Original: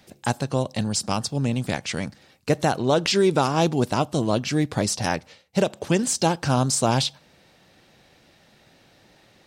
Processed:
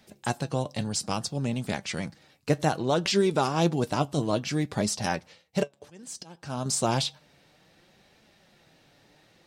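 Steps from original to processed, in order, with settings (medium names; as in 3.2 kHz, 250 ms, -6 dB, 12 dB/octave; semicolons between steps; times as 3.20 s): 5.63–6.66 s: slow attack 762 ms; flange 0.61 Hz, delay 4.5 ms, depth 2.7 ms, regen +64%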